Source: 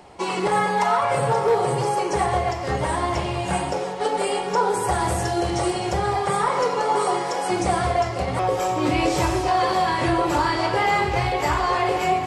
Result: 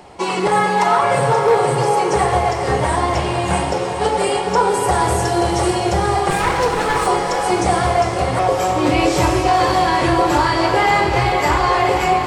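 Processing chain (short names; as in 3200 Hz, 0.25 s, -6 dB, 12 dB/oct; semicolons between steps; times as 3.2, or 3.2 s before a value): 6.3–7.07 minimum comb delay 6.2 ms; diffused feedback echo 0.463 s, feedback 57%, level -9 dB; gain +5 dB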